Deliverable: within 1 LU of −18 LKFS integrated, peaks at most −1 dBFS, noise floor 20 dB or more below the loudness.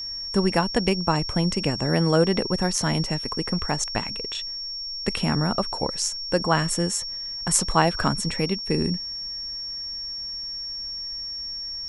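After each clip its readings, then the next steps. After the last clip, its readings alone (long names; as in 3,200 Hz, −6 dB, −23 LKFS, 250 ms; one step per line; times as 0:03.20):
crackle rate 44 per second; interfering tone 5,500 Hz; level of the tone −30 dBFS; integrated loudness −24.5 LKFS; sample peak −3.0 dBFS; target loudness −18.0 LKFS
→ click removal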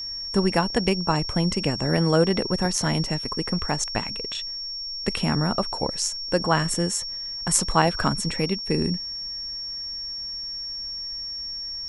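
crackle rate 0.17 per second; interfering tone 5,500 Hz; level of the tone −30 dBFS
→ notch filter 5,500 Hz, Q 30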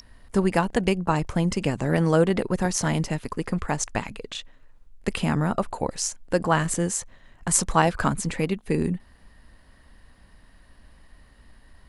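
interfering tone none found; integrated loudness −25.0 LKFS; sample peak −3.0 dBFS; target loudness −18.0 LKFS
→ level +7 dB
brickwall limiter −1 dBFS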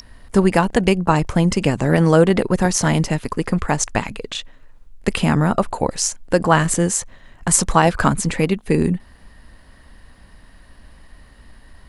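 integrated loudness −18.5 LKFS; sample peak −1.0 dBFS; background noise floor −48 dBFS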